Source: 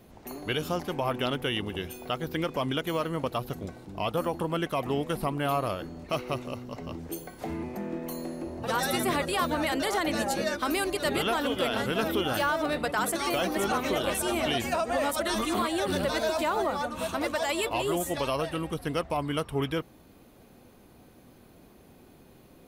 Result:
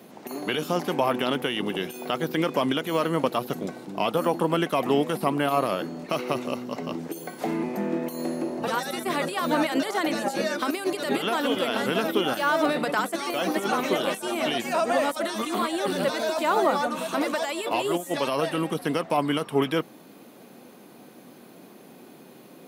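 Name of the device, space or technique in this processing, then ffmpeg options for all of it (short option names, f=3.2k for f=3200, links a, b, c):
de-esser from a sidechain: -filter_complex "[0:a]asplit=2[a][b];[b]highpass=6.4k,apad=whole_len=999952[c];[a][c]sidechaincompress=threshold=-49dB:ratio=4:attack=1.7:release=25,highpass=f=170:w=0.5412,highpass=f=170:w=1.3066,volume=7.5dB"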